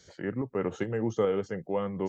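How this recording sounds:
tremolo saw up 2.4 Hz, depth 45%

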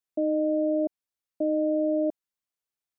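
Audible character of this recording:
background noise floor −91 dBFS
spectral slope −2.5 dB per octave

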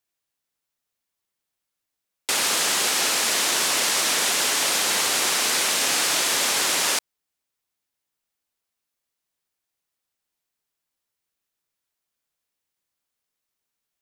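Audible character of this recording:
background noise floor −83 dBFS
spectral slope 0.0 dB per octave

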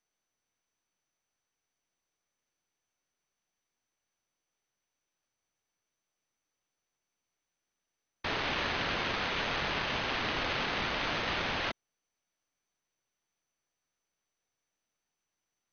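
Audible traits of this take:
aliases and images of a low sample rate 5,800 Hz, jitter 0%
MP2

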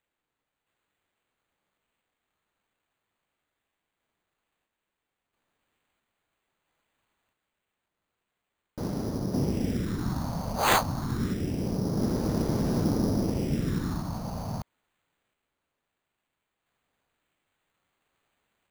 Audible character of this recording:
phaser sweep stages 4, 0.26 Hz, lowest notch 340–4,700 Hz
aliases and images of a low sample rate 5,400 Hz, jitter 0%
sample-and-hold tremolo 1.5 Hz

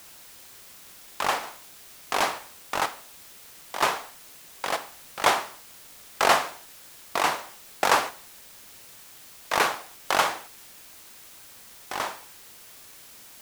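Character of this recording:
sample-and-hold tremolo 2.1 Hz, depth 85%
a quantiser's noise floor 8 bits, dither triangular

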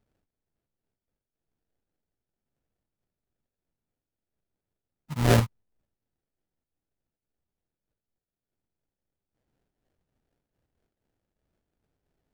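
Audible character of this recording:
phaser sweep stages 8, 2.2 Hz, lowest notch 360–1,000 Hz
aliases and images of a low sample rate 1,100 Hz, jitter 20%
amplitude modulation by smooth noise

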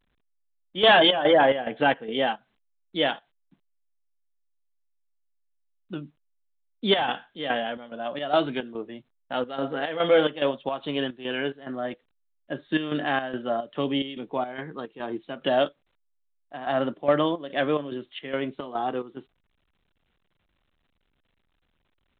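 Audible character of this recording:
chopped level 2.4 Hz, depth 65%, duty 65%
A-law companding

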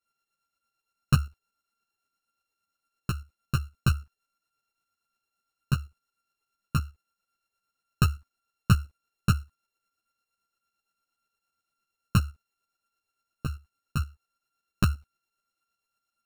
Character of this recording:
a buzz of ramps at a fixed pitch in blocks of 32 samples
tremolo saw up 8.7 Hz, depth 60%
a shimmering, thickened sound

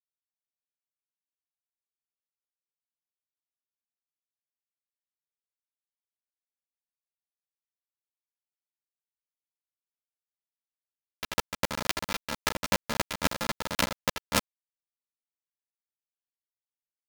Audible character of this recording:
a buzz of ramps at a fixed pitch in blocks of 128 samples
chopped level 3.7 Hz, depth 65%, duty 20%
a quantiser's noise floor 6 bits, dither none
a shimmering, thickened sound

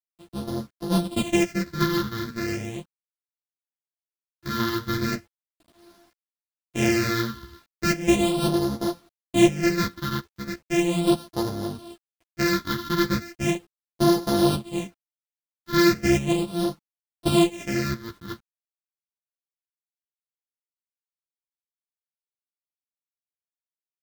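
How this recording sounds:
a buzz of ramps at a fixed pitch in blocks of 128 samples
phaser sweep stages 6, 0.37 Hz, lowest notch 660–2,400 Hz
a quantiser's noise floor 10 bits, dither none
a shimmering, thickened sound

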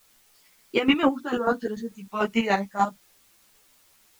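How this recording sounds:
chopped level 6.8 Hz, depth 65%, duty 30%
a quantiser's noise floor 10 bits, dither triangular
a shimmering, thickened sound

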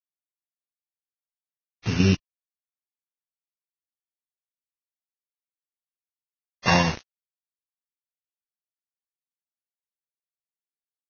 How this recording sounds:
a buzz of ramps at a fixed pitch in blocks of 16 samples
tremolo saw down 3 Hz, depth 55%
a quantiser's noise floor 6 bits, dither none
Ogg Vorbis

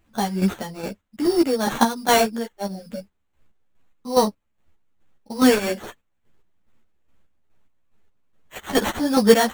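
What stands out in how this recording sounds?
aliases and images of a low sample rate 5,000 Hz, jitter 0%
chopped level 2.4 Hz, depth 60%, duty 40%
a shimmering, thickened sound

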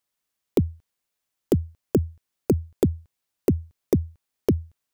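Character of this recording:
background noise floor −82 dBFS
spectral slope −9.0 dB per octave

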